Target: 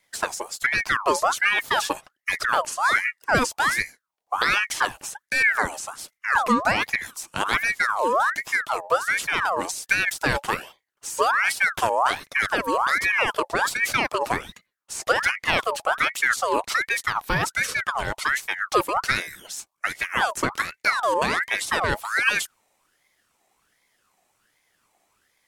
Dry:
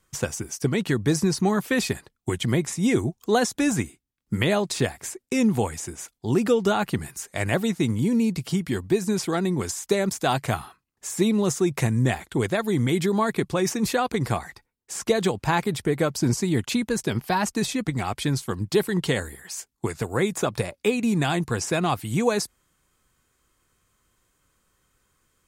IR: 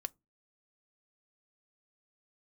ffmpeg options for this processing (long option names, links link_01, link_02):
-af "aeval=exprs='val(0)*sin(2*PI*1400*n/s+1400*0.5/1.3*sin(2*PI*1.3*n/s))':channel_layout=same,volume=3dB"